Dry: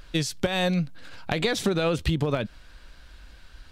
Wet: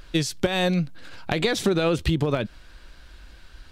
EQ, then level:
parametric band 350 Hz +4.5 dB 0.28 octaves
+1.5 dB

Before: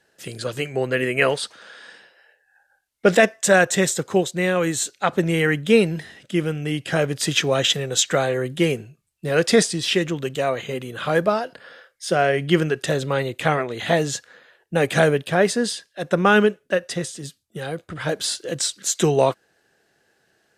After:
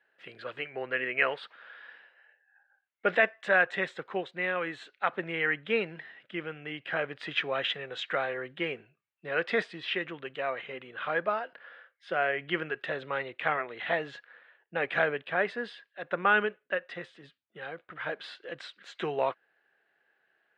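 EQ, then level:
resonant band-pass 2,200 Hz, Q 0.82
high-frequency loss of the air 490 metres
0.0 dB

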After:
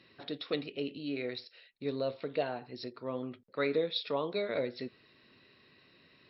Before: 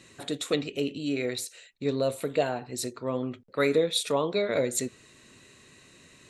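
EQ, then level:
linear-phase brick-wall low-pass 5,500 Hz
low-shelf EQ 78 Hz −11 dB
−6.5 dB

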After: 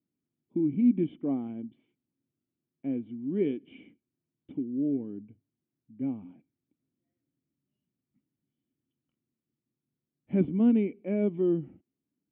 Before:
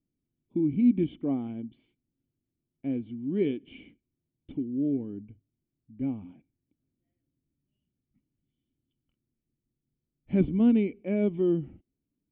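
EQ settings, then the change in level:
high-pass filter 150 Hz 12 dB per octave
high-frequency loss of the air 330 metres
0.0 dB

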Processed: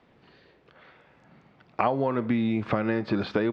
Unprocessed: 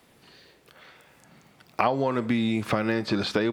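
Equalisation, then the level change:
low-pass filter 2,600 Hz 6 dB per octave
high-frequency loss of the air 150 metres
0.0 dB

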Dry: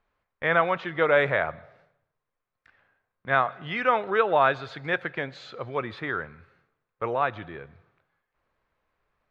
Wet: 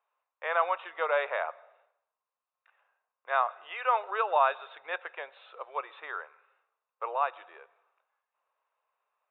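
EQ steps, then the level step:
inverse Chebyshev high-pass filter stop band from 240 Hz, stop band 40 dB
Chebyshev low-pass with heavy ripple 3,800 Hz, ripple 9 dB
high-frequency loss of the air 83 metres
0.0 dB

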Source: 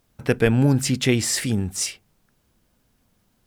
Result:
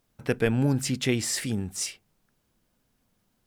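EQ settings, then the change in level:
parametric band 62 Hz −5 dB 1.2 octaves
−5.5 dB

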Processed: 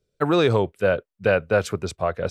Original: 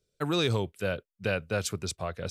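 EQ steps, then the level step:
dynamic equaliser 1,600 Hz, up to +5 dB, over −44 dBFS, Q 0.86
dynamic equaliser 570 Hz, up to +7 dB, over −42 dBFS, Q 0.74
high-shelf EQ 2,800 Hz −9 dB
+4.5 dB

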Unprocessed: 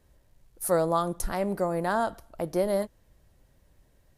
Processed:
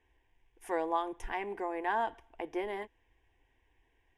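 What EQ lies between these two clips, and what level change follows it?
low-pass with resonance 3,400 Hz, resonance Q 1.6
low-shelf EQ 380 Hz −10 dB
phaser with its sweep stopped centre 870 Hz, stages 8
0.0 dB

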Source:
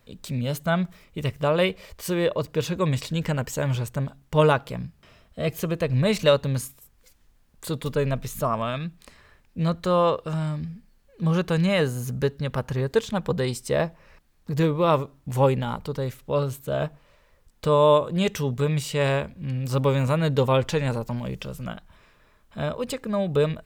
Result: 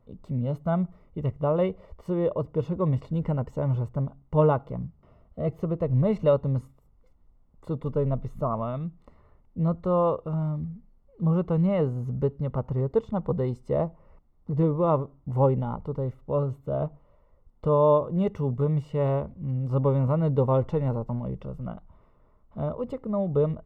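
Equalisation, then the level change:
Savitzky-Golay smoothing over 65 samples
low-shelf EQ 150 Hz +4 dB
−2.5 dB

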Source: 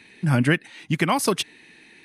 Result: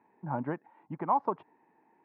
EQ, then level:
high-pass filter 280 Hz 6 dB per octave
transistor ladder low-pass 1,000 Hz, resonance 70%
0.0 dB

